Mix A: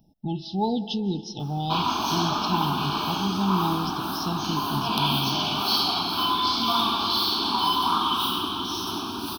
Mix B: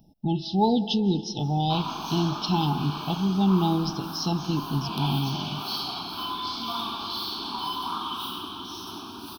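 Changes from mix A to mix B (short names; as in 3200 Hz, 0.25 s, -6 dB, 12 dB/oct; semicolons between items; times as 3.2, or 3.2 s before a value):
speech +3.5 dB; background -8.0 dB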